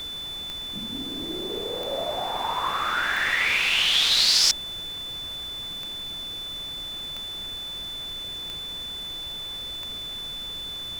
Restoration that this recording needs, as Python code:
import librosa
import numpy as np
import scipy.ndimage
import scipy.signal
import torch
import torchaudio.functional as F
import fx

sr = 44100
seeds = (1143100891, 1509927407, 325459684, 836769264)

y = fx.fix_declick_ar(x, sr, threshold=10.0)
y = fx.notch(y, sr, hz=3500.0, q=30.0)
y = fx.noise_reduce(y, sr, print_start_s=4.65, print_end_s=5.15, reduce_db=30.0)